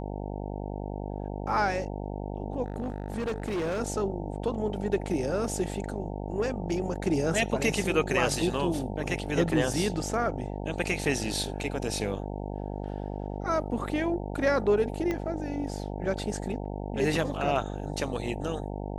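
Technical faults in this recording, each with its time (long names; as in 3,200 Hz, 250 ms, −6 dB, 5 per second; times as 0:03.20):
mains buzz 50 Hz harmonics 18 −35 dBFS
0:02.66–0:03.81: clipping −27 dBFS
0:15.11: click −18 dBFS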